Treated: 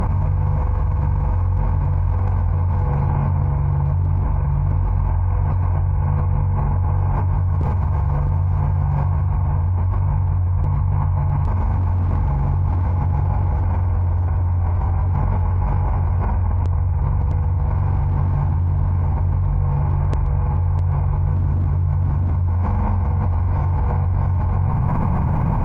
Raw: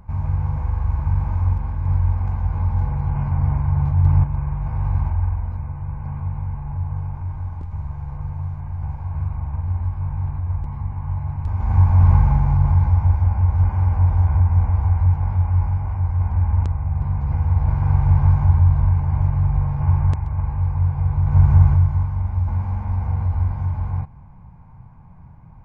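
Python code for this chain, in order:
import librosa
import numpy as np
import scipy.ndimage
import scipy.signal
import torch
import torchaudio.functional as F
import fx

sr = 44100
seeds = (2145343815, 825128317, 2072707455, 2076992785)

p1 = fx.peak_eq(x, sr, hz=460.0, db=7.0, octaves=1.4)
p2 = fx.notch(p1, sr, hz=800.0, q=18.0)
p3 = fx.clip_asym(p2, sr, top_db=-10.5, bottom_db=-7.0)
p4 = p3 + fx.echo_single(p3, sr, ms=656, db=-6.5, dry=0)
p5 = fx.env_flatten(p4, sr, amount_pct=100)
y = p5 * librosa.db_to_amplitude(-8.5)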